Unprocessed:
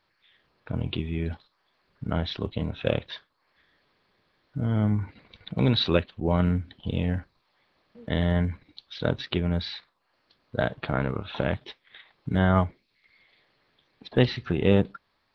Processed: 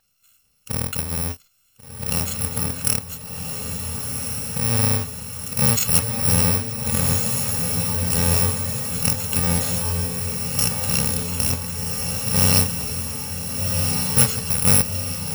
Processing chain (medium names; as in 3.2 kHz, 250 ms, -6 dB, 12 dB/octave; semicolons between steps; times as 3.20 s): bit-reversed sample order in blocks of 128 samples; echo that smears into a reverb 1476 ms, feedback 63%, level -3 dB; trim +4 dB